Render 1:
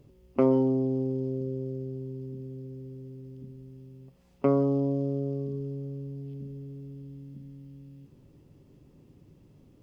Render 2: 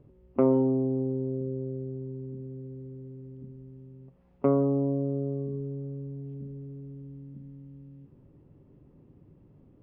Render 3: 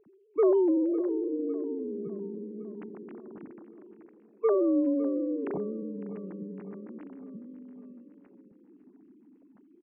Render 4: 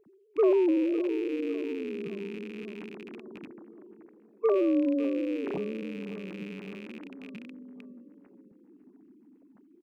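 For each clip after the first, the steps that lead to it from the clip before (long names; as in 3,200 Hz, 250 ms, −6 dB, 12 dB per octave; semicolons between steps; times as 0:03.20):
low-pass filter 1,600 Hz 12 dB per octave
three sine waves on the formant tracks; repeating echo 555 ms, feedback 60%, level −16 dB
loose part that buzzes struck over −46 dBFS, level −35 dBFS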